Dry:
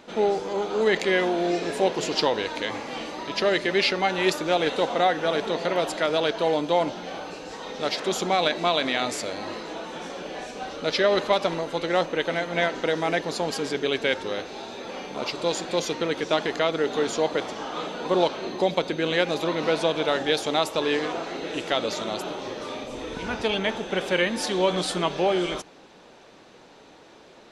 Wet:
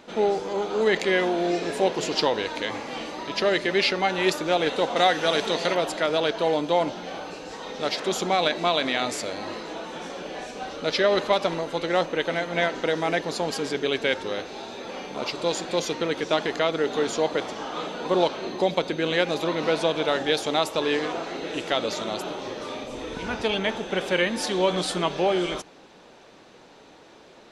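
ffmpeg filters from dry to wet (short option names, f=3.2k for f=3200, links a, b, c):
-filter_complex "[0:a]asettb=1/sr,asplit=3[a][b][c];[a]atrim=end=4.964[d];[b]atrim=start=4.96:end=5.75,asetpts=PTS-STARTPTS,afade=t=in:d=0.004:c=qsin,afade=t=out:st=0.786:d=0.004:c=qsin,highshelf=f=2.5k:g=10[e];[c]atrim=start=5.746[f];[d][e]acrossfade=d=0.004:c1=hsin:c2=qsin[g];[g][f]acrossfade=d=0.004:c1=qsin:c2=hsin"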